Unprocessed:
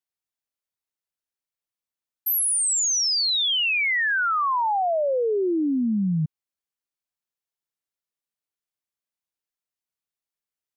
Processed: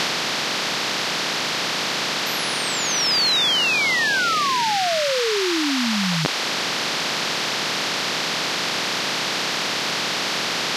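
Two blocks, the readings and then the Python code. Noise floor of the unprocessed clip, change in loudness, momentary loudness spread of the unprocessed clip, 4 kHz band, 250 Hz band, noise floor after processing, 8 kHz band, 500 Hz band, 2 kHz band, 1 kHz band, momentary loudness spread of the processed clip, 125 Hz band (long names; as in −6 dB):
below −85 dBFS, +1.0 dB, 5 LU, +8.5 dB, +1.0 dB, −25 dBFS, 0.0 dB, +2.5 dB, +6.5 dB, +4.0 dB, 5 LU, +0.5 dB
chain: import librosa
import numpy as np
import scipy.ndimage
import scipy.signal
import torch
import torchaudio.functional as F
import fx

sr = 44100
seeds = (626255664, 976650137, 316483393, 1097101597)

p1 = fx.bin_compress(x, sr, power=0.2)
p2 = fx.dereverb_blind(p1, sr, rt60_s=0.52)
p3 = fx.high_shelf_res(p2, sr, hz=6900.0, db=-13.0, q=1.5)
p4 = np.clip(p3, -10.0 ** (-13.5 / 20.0), 10.0 ** (-13.5 / 20.0))
p5 = p3 + (p4 * 10.0 ** (-6.0 / 20.0))
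y = p5 * 10.0 ** (-5.0 / 20.0)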